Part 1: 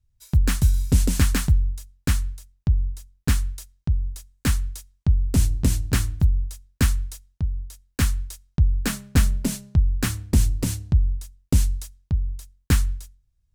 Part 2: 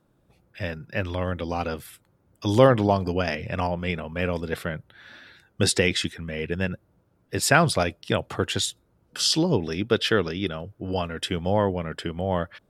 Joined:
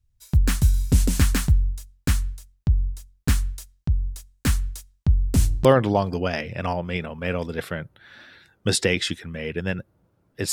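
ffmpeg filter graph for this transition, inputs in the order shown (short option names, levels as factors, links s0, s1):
-filter_complex "[0:a]apad=whole_dur=10.52,atrim=end=10.52,atrim=end=5.652[s0];[1:a]atrim=start=2.588:end=7.46[s1];[s0][s1]acrossfade=d=0.004:c1=hsin:c2=hsin"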